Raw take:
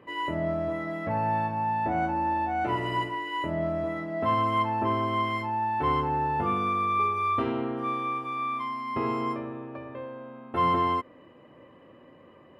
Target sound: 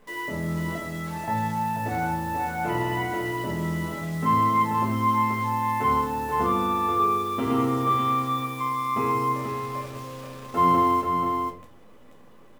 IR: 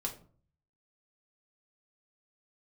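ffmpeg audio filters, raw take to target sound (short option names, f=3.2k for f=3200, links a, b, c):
-filter_complex "[0:a]asettb=1/sr,asplit=3[a][b][c];[a]atrim=end=0.754[d];[b]atrim=start=0.75:end=1.28,asetpts=PTS-STARTPTS,afade=t=in:d=0.004:c=qsin,afade=t=out:st=0.526:d=0.004:c=qsin,highpass=1.3k[e];[c]atrim=start=1.276[f];[d][e]acrossfade=d=0.004:c1=hsin:c2=qsin[g];[g][f]acrossfade=d=0.004:c1=qsin:c2=hsin,asettb=1/sr,asplit=3[h][i][j];[h]atrim=end=7.504[k];[i]atrim=start=7.5:end=8.45,asetpts=PTS-STARTPTS,afade=t=in:d=0.004:c=qsin,afade=t=out:st=0.946:d=0.004:c=qsin,acontrast=25[l];[j]atrim=start=8.446[m];[k][l]acrossfade=d=0.004:c1=hsin:c2=qsin[n];[n][m]acrossfade=d=0.004:c1=qsin:c2=hsin,acrusher=bits=8:dc=4:mix=0:aa=0.000001,aecho=1:1:484:0.531[o];[1:a]atrim=start_sample=2205[p];[o][p]afir=irnorm=-1:irlink=0"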